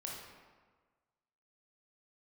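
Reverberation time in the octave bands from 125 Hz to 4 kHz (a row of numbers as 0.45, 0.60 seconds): 1.5, 1.4, 1.5, 1.5, 1.2, 0.90 seconds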